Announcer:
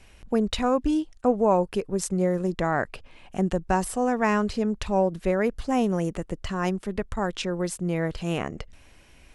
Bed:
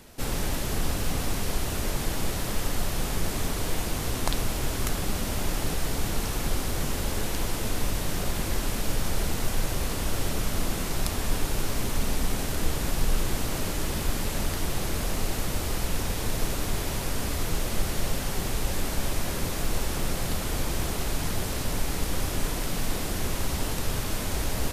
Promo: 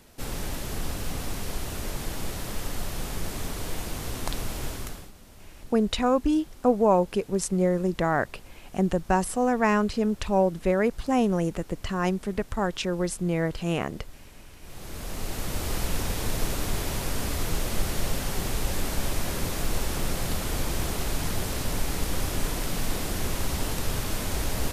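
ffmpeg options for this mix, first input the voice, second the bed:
-filter_complex "[0:a]adelay=5400,volume=0.5dB[a];[1:a]volume=17.5dB,afade=t=out:st=4.66:d=0.45:silence=0.133352,afade=t=in:st=14.6:d=1.16:silence=0.0841395[b];[a][b]amix=inputs=2:normalize=0"

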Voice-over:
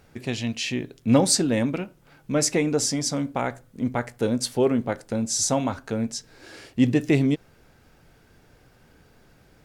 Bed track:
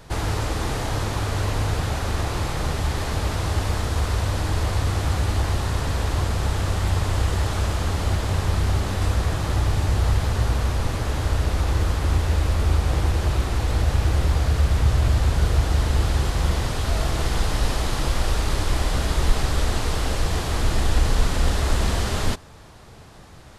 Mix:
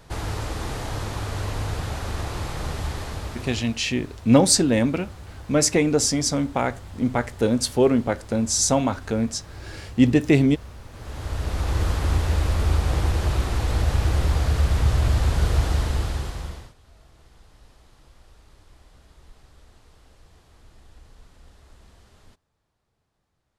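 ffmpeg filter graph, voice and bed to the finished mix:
-filter_complex "[0:a]adelay=3200,volume=3dB[a];[1:a]volume=13dB,afade=t=out:st=2.84:d=0.93:silence=0.199526,afade=t=in:st=10.91:d=0.95:silence=0.133352,afade=t=out:st=15.65:d=1.09:silence=0.0334965[b];[a][b]amix=inputs=2:normalize=0"

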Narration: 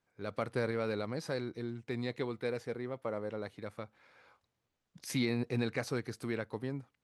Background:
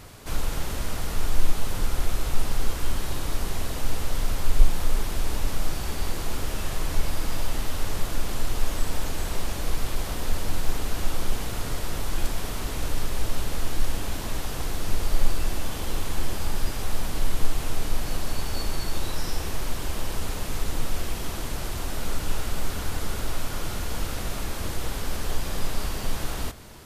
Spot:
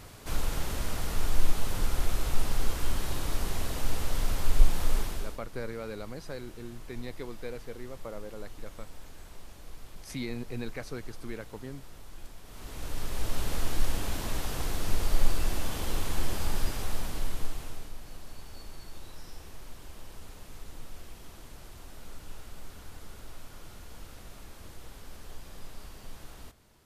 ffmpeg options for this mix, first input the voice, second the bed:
-filter_complex "[0:a]adelay=5000,volume=-4dB[a];[1:a]volume=14dB,afade=t=out:st=4.97:d=0.42:silence=0.149624,afade=t=in:st=12.45:d=1.06:silence=0.141254,afade=t=out:st=16.55:d=1.38:silence=0.188365[b];[a][b]amix=inputs=2:normalize=0"

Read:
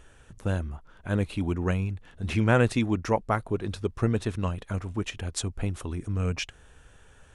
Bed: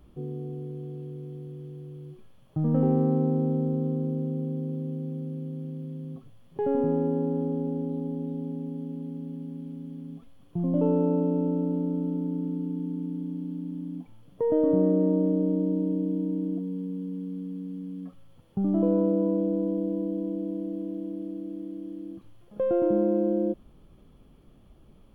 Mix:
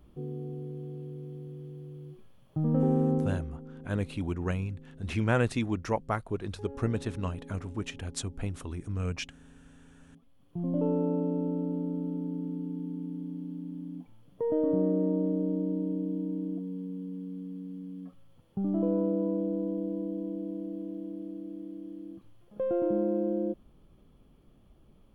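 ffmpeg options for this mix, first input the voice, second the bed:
-filter_complex "[0:a]adelay=2800,volume=-4.5dB[a];[1:a]volume=12dB,afade=t=out:st=3.14:d=0.33:silence=0.149624,afade=t=in:st=10.06:d=0.62:silence=0.188365[b];[a][b]amix=inputs=2:normalize=0"

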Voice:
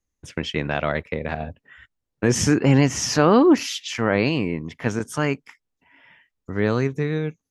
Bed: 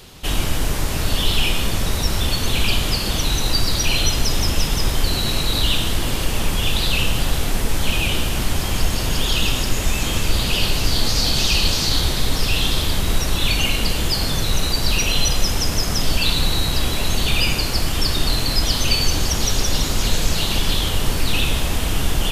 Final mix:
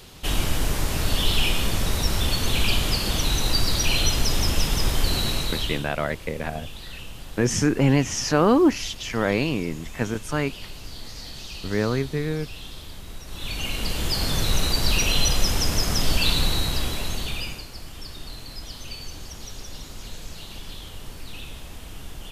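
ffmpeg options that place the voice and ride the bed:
-filter_complex "[0:a]adelay=5150,volume=-2.5dB[a];[1:a]volume=14dB,afade=t=out:st=5.2:d=0.69:silence=0.149624,afade=t=in:st=13.25:d=1.16:silence=0.141254,afade=t=out:st=16.33:d=1.34:silence=0.158489[b];[a][b]amix=inputs=2:normalize=0"

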